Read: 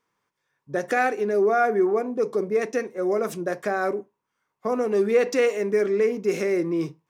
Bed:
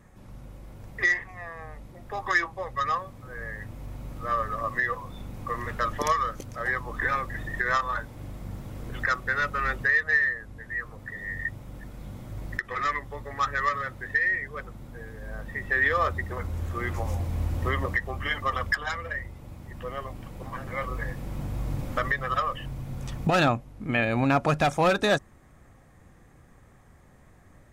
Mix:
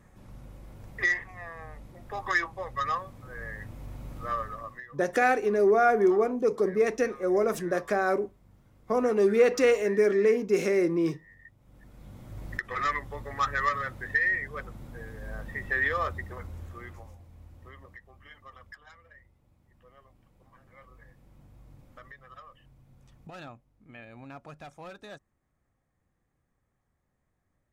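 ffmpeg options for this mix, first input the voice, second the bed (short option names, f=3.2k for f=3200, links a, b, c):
-filter_complex "[0:a]adelay=4250,volume=-1dB[a];[1:a]volume=18dB,afade=t=out:st=4.21:d=0.65:silence=0.112202,afade=t=in:st=11.57:d=1.24:silence=0.0944061,afade=t=out:st=15.29:d=1.88:silence=0.0841395[b];[a][b]amix=inputs=2:normalize=0"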